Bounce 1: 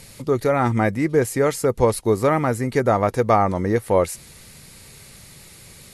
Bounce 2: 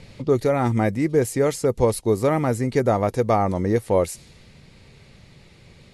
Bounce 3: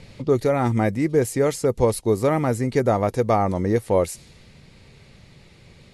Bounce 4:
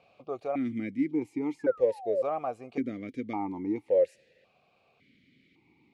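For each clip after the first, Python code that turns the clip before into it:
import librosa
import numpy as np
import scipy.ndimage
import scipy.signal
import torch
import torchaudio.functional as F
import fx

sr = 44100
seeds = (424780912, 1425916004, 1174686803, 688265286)

y1 = fx.env_lowpass(x, sr, base_hz=2800.0, full_db=-14.5)
y1 = fx.peak_eq(y1, sr, hz=1400.0, db=-6.0, octaves=1.4)
y1 = fx.rider(y1, sr, range_db=10, speed_s=0.5)
y2 = y1
y3 = fx.spec_paint(y2, sr, seeds[0], shape='fall', start_s=1.59, length_s=0.63, low_hz=510.0, high_hz=1800.0, level_db=-24.0)
y3 = fx.vowel_held(y3, sr, hz=1.8)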